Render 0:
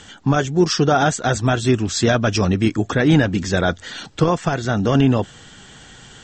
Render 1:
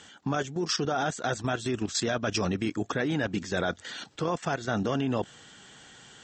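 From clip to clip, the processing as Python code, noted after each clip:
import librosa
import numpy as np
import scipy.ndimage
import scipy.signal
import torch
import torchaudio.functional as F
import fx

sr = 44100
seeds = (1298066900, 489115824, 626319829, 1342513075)

y = fx.highpass(x, sr, hz=220.0, slope=6)
y = fx.level_steps(y, sr, step_db=12)
y = y * 10.0 ** (-3.5 / 20.0)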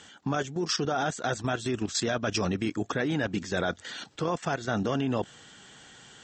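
y = x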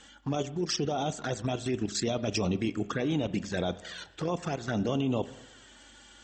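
y = fx.add_hum(x, sr, base_hz=50, snr_db=33)
y = fx.env_flanger(y, sr, rest_ms=4.1, full_db=-24.0)
y = fx.rev_spring(y, sr, rt60_s=1.0, pass_ms=(34, 39, 44), chirp_ms=75, drr_db=14.5)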